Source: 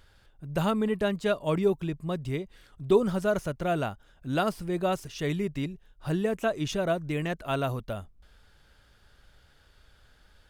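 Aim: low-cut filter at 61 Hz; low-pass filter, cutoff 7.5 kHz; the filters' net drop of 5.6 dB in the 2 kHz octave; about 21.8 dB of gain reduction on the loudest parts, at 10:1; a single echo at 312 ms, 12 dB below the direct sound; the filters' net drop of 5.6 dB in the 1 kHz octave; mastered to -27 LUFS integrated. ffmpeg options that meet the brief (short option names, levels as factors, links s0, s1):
-af "highpass=61,lowpass=7500,equalizer=f=1000:t=o:g=-8,equalizer=f=2000:t=o:g=-4.5,acompressor=threshold=0.00891:ratio=10,aecho=1:1:312:0.251,volume=8.41"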